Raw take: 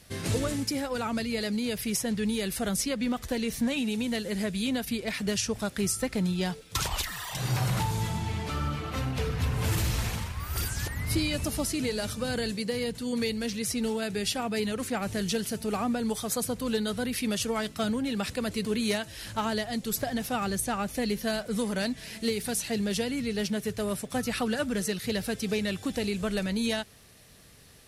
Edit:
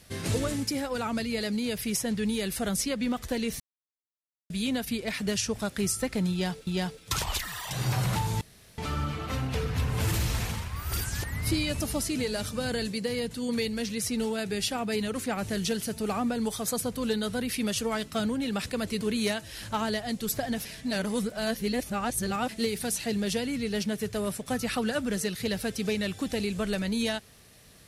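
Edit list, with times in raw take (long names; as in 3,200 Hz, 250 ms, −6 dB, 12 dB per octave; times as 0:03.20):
0:03.60–0:04.50: silence
0:06.31–0:06.67: repeat, 2 plays
0:08.05–0:08.42: fill with room tone
0:20.29–0:22.13: reverse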